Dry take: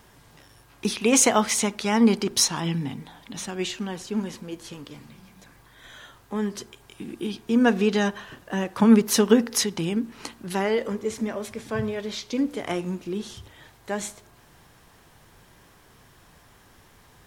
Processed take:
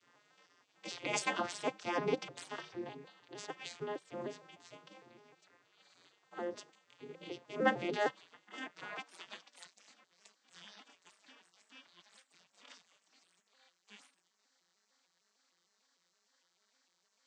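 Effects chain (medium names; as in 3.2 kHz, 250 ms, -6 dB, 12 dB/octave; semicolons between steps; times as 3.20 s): vocoder on a broken chord minor triad, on F3, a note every 152 ms; high-pass sweep 200 Hz -> 1.5 kHz, 8.08–9.44 s; spectral gate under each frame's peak -20 dB weak; trim +2.5 dB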